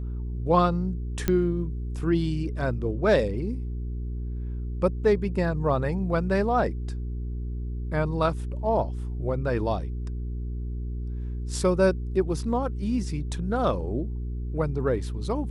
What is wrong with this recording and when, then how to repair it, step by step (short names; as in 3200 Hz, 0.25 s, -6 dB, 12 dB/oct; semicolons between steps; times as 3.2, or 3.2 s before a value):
hum 60 Hz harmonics 7 -31 dBFS
1.28 pop -10 dBFS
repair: de-click; de-hum 60 Hz, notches 7